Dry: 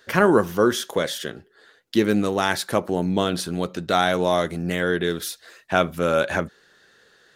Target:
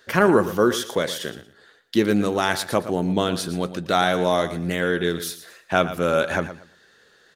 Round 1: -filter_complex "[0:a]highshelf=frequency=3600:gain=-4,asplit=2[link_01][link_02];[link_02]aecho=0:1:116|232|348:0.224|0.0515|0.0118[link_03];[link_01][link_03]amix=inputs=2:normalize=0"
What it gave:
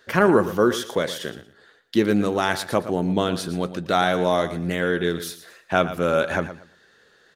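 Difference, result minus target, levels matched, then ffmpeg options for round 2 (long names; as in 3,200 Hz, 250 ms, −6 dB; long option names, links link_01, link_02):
8,000 Hz band −3.0 dB
-filter_complex "[0:a]asplit=2[link_01][link_02];[link_02]aecho=0:1:116|232|348:0.224|0.0515|0.0118[link_03];[link_01][link_03]amix=inputs=2:normalize=0"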